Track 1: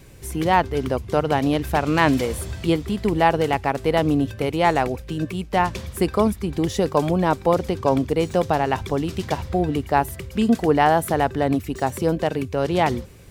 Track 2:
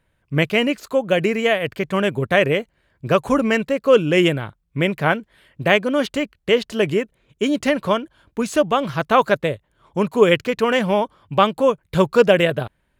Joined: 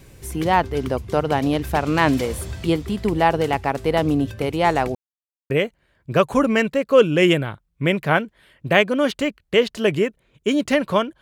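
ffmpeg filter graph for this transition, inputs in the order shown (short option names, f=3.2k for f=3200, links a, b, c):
-filter_complex "[0:a]apad=whole_dur=11.21,atrim=end=11.21,asplit=2[a][b];[a]atrim=end=4.95,asetpts=PTS-STARTPTS,afade=t=out:st=4.946:d=0.004:c=hsin[c];[b]atrim=start=4.95:end=5.5,asetpts=PTS-STARTPTS,volume=0[d];[1:a]atrim=start=2.45:end=8.16,asetpts=PTS-STARTPTS,afade=t=in:d=0.004:c=hsin[e];[c][d][e]concat=n=3:v=0:a=1"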